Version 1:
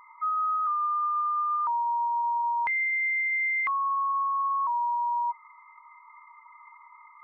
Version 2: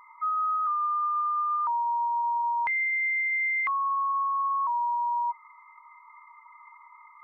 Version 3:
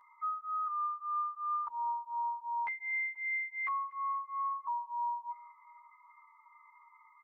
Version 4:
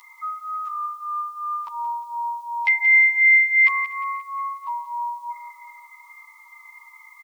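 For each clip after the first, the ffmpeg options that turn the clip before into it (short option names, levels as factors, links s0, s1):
-af "bandreject=f=60:t=h:w=6,bandreject=f=120:t=h:w=6,bandreject=f=180:t=h:w=6,bandreject=f=240:t=h:w=6,bandreject=f=300:t=h:w=6,bandreject=f=360:t=h:w=6,bandreject=f=420:t=h:w=6,bandreject=f=480:t=h:w=6,bandreject=f=540:t=h:w=6"
-filter_complex "[0:a]aecho=1:1:242|484|726|968:0.0668|0.0394|0.0233|0.0137,asplit=2[s0][s1];[s1]adelay=10.9,afreqshift=-2.8[s2];[s0][s2]amix=inputs=2:normalize=1,volume=0.501"
-filter_complex "[0:a]aexciter=amount=12.7:drive=4.4:freq=2200,asplit=2[s0][s1];[s1]aecho=0:1:177|354|531|708|885:0.237|0.114|0.0546|0.0262|0.0126[s2];[s0][s2]amix=inputs=2:normalize=0,volume=2.24"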